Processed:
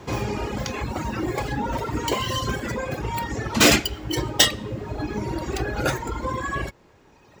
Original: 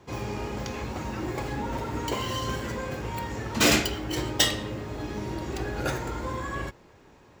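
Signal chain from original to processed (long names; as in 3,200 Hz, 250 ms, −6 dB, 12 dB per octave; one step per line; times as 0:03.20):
reverb reduction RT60 1.9 s
in parallel at +1 dB: downward compressor, threshold −41 dBFS, peak gain reduction 22.5 dB
on the sum: level +5 dB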